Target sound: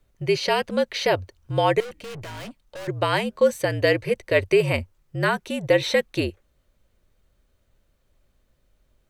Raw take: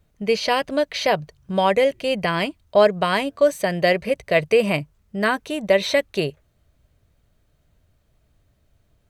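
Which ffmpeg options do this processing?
ffmpeg -i in.wav -filter_complex "[0:a]afreqshift=-58,asettb=1/sr,asplit=3[link_01][link_02][link_03];[link_01]atrim=end=1.804[link_04];[link_02]atrim=start=1.8:end=2.88,asetpts=PTS-STARTPTS,afade=type=in:duration=0.004:curve=qsin,afade=type=out:start_time=1.076:duration=0.004:curve=qsin,aeval=exprs='(tanh(44.7*val(0)+0.3)-tanh(0.3))/44.7':channel_layout=same[link_05];[link_03]atrim=start=2.876[link_06];[link_04][link_05]acrossfade=duration=0.004:curve1=hsin:curve2=qsin[link_07];[link_07][link_06]acrossfade=duration=0.004:curve1=qsin:curve2=hsin,volume=-1.5dB" out.wav

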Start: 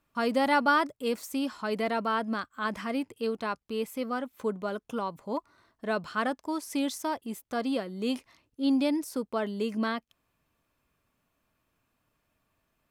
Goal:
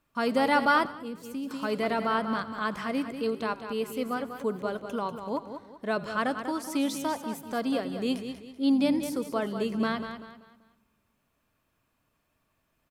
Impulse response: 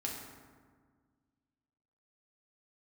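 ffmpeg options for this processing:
-filter_complex "[0:a]aecho=1:1:193|386|579|772:0.355|0.121|0.041|0.0139,asplit=2[link_01][link_02];[1:a]atrim=start_sample=2205[link_03];[link_02][link_03]afir=irnorm=-1:irlink=0,volume=-20.5dB[link_04];[link_01][link_04]amix=inputs=2:normalize=0,asettb=1/sr,asplit=3[link_05][link_06][link_07];[link_05]atrim=end=0.854[link_08];[link_06]atrim=start=0.85:end=1.51,asetpts=PTS-STARTPTS,afade=type=in:duration=0.004:curve=qsin,afade=type=out:start_time=0.656:duration=0.004:curve=qsin,acrossover=split=240[link_09][link_10];[link_10]acompressor=threshold=-41dB:ratio=10[link_11];[link_09][link_11]amix=inputs=2:normalize=0[link_12];[link_07]atrim=start=1.506[link_13];[link_08][link_12]acrossfade=duration=0.004:curve1=hsin:curve2=qsin[link_14];[link_14][link_13]acrossfade=duration=0.004:curve1=qsin:curve2=hsin,asplit=2[link_15][link_16];[link_16]asplit=3[link_17][link_18][link_19];[link_17]adelay=87,afreqshift=-61,volume=-19.5dB[link_20];[link_18]adelay=174,afreqshift=-122,volume=-27.2dB[link_21];[link_19]adelay=261,afreqshift=-183,volume=-35dB[link_22];[link_20][link_21][link_22]amix=inputs=3:normalize=0[link_23];[link_15][link_23]amix=inputs=2:normalize=0"

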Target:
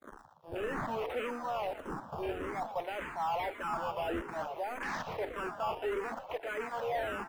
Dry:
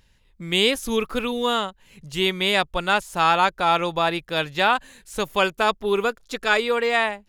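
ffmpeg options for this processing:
ffmpeg -i in.wav -filter_complex "[0:a]aeval=exprs='val(0)+0.5*0.1*sgn(val(0))':channel_layout=same,highpass=frequency=270:width=0.5412,highpass=frequency=270:width=1.3066,bandreject=frequency=50:width_type=h:width=6,bandreject=frequency=100:width_type=h:width=6,bandreject=frequency=150:width_type=h:width=6,bandreject=frequency=200:width_type=h:width=6,bandreject=frequency=250:width_type=h:width=6,bandreject=frequency=300:width_type=h:width=6,bandreject=frequency=350:width_type=h:width=6,bandreject=frequency=400:width_type=h:width=6,bandreject=frequency=450:width_type=h:width=6,agate=range=-31dB:threshold=-28dB:ratio=16:detection=peak,equalizer=frequency=760:width_type=o:width=1:gain=12,areverse,acompressor=threshold=-19dB:ratio=4,areverse,acrusher=samples=15:mix=1:aa=0.000001:lfo=1:lforange=15:lforate=0.58,asoftclip=type=hard:threshold=-20.5dB,afwtdn=0.0282,asplit=2[link_01][link_02];[link_02]asplit=5[link_03][link_04][link_05][link_06][link_07];[link_03]adelay=117,afreqshift=71,volume=-11.5dB[link_08];[link_04]adelay=234,afreqshift=142,volume=-17.3dB[link_09];[link_05]adelay=351,afreqshift=213,volume=-23.2dB[link_10];[link_06]adelay=468,afreqshift=284,volume=-29dB[link_11];[link_07]adelay=585,afreqshift=355,volume=-34.9dB[link_12];[link_08][link_09][link_10][link_11][link_12]amix=inputs=5:normalize=0[link_13];[link_01][link_13]amix=inputs=2:normalize=0,asplit=2[link_14][link_15];[link_15]afreqshift=-1.7[link_16];[link_14][link_16]amix=inputs=2:normalize=1,volume=-8.5dB" out.wav

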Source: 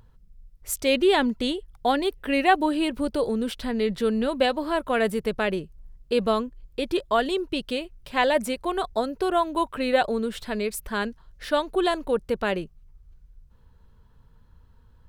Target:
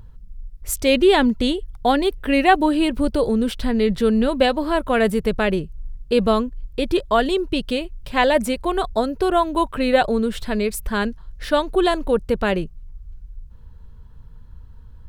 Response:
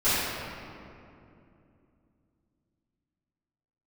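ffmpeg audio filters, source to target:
-af "lowshelf=frequency=150:gain=10.5,volume=4dB"

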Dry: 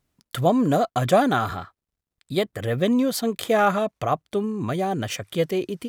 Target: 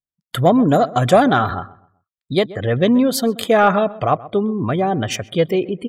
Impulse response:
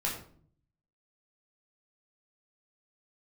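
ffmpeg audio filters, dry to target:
-filter_complex "[0:a]afftdn=noise_reduction=34:noise_floor=-41,acontrast=34,asplit=2[link_01][link_02];[link_02]adelay=129,lowpass=frequency=1700:poles=1,volume=-18dB,asplit=2[link_03][link_04];[link_04]adelay=129,lowpass=frequency=1700:poles=1,volume=0.34,asplit=2[link_05][link_06];[link_06]adelay=129,lowpass=frequency=1700:poles=1,volume=0.34[link_07];[link_01][link_03][link_05][link_07]amix=inputs=4:normalize=0,volume=1dB"

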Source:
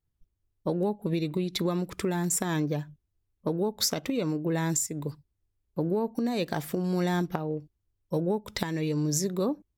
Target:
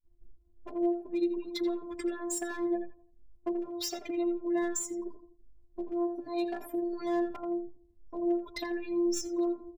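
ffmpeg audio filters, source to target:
ffmpeg -i in.wav -filter_complex "[0:a]aeval=exprs='val(0)+0.5*0.0133*sgn(val(0))':channel_layout=same,afftdn=noise_reduction=35:noise_floor=-37,afftfilt=real='hypot(re,im)*cos(PI*b)':imag='0':win_size=512:overlap=0.75,agate=range=-29dB:threshold=-46dB:ratio=16:detection=peak,volume=23dB,asoftclip=hard,volume=-23dB,asplit=2[link_01][link_02];[link_02]adelay=84,lowpass=frequency=1600:poles=1,volume=-6.5dB,asplit=2[link_03][link_04];[link_04]adelay=84,lowpass=frequency=1600:poles=1,volume=0.3,asplit=2[link_05][link_06];[link_06]adelay=84,lowpass=frequency=1600:poles=1,volume=0.3,asplit=2[link_07][link_08];[link_08]adelay=84,lowpass=frequency=1600:poles=1,volume=0.3[link_09];[link_01][link_03][link_05][link_07][link_09]amix=inputs=5:normalize=0,asplit=2[link_10][link_11];[link_11]adelay=4.6,afreqshift=2.7[link_12];[link_10][link_12]amix=inputs=2:normalize=1" out.wav

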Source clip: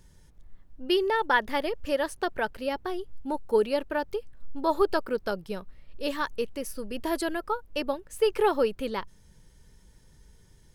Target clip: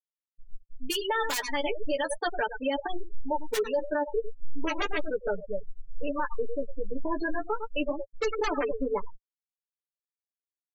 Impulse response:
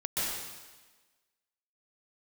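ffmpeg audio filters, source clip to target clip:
-af "aeval=exprs='(mod(5.96*val(0)+1,2)-1)/5.96':channel_layout=same,asetnsamples=nb_out_samples=441:pad=0,asendcmd='3.71 highshelf g -2',highshelf=frequency=2500:gain=10.5,aecho=1:1:102:0.266,afftfilt=real='re*gte(hypot(re,im),0.0794)':imag='im*gte(hypot(re,im),0.0794)':win_size=1024:overlap=0.75,dynaudnorm=framelen=120:gausssize=7:maxgain=6dB,flanger=delay=3.2:depth=7.8:regen=19:speed=0.35:shape=sinusoidal,acompressor=threshold=-23dB:ratio=6,equalizer=frequency=86:width_type=o:width=1.9:gain=-15,aecho=1:1:6.8:0.99,alimiter=limit=-19.5dB:level=0:latency=1:release=11"

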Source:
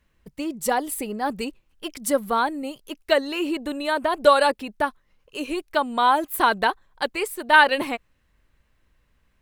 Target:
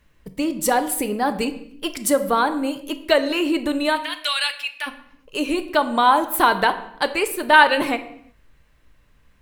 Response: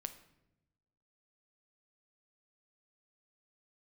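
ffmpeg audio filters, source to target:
-filter_complex "[0:a]asplit=2[link_01][link_02];[link_02]acompressor=threshold=-28dB:ratio=6,volume=0.5dB[link_03];[link_01][link_03]amix=inputs=2:normalize=0,asplit=3[link_04][link_05][link_06];[link_04]afade=type=out:start_time=3.95:duration=0.02[link_07];[link_05]highpass=frequency=2500:width_type=q:width=2.3,afade=type=in:start_time=3.95:duration=0.02,afade=type=out:start_time=4.86:duration=0.02[link_08];[link_06]afade=type=in:start_time=4.86:duration=0.02[link_09];[link_07][link_08][link_09]amix=inputs=3:normalize=0[link_10];[1:a]atrim=start_sample=2205,afade=type=out:start_time=0.43:duration=0.01,atrim=end_sample=19404[link_11];[link_10][link_11]afir=irnorm=-1:irlink=0,volume=3.5dB"

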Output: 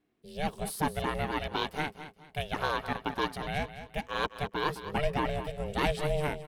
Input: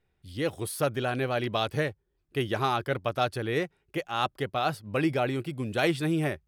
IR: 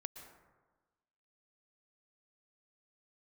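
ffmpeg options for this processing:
-filter_complex "[0:a]asettb=1/sr,asplit=3[link_01][link_02][link_03];[link_01]atrim=end=1.254[link_04];[link_02]atrim=start=1.25:end=3.59,asetpts=PTS-STARTPTS,afade=type=in:duration=0.004:curve=qsin,afade=type=out:start_time=2.336:duration=0.004:curve=qsin,lowshelf=frequency=230:gain=-9[link_05];[link_03]atrim=start=3.586[link_06];[link_04][link_05]acrossfade=duration=0.004:curve1=hsin:curve2=qsin[link_07];[link_07][link_06]acrossfade=duration=0.004:curve1=qsin:curve2=hsin,aecho=1:1:212|424|636:0.251|0.0779|0.0241,aeval=exprs='val(0)*sin(2*PI*300*n/s)':channel_layout=same"

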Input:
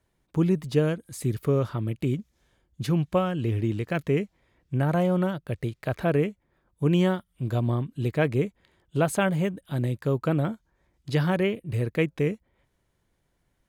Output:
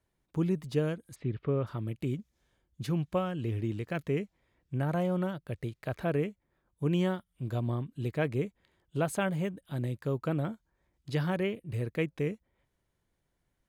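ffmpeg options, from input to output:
ffmpeg -i in.wav -filter_complex "[0:a]asplit=3[link_01][link_02][link_03];[link_01]afade=type=out:start_time=1.14:duration=0.02[link_04];[link_02]lowpass=frequency=3200:width=0.5412,lowpass=frequency=3200:width=1.3066,afade=type=in:start_time=1.14:duration=0.02,afade=type=out:start_time=1.66:duration=0.02[link_05];[link_03]afade=type=in:start_time=1.66:duration=0.02[link_06];[link_04][link_05][link_06]amix=inputs=3:normalize=0,volume=-6.5dB" out.wav

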